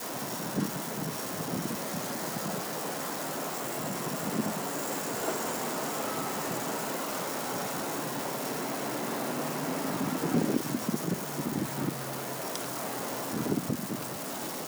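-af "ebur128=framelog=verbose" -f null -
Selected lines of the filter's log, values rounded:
Integrated loudness:
  I:         -32.5 LUFS
  Threshold: -42.5 LUFS
Loudness range:
  LRA:         1.9 LU
  Threshold: -52.3 LUFS
  LRA low:   -33.3 LUFS
  LRA high:  -31.4 LUFS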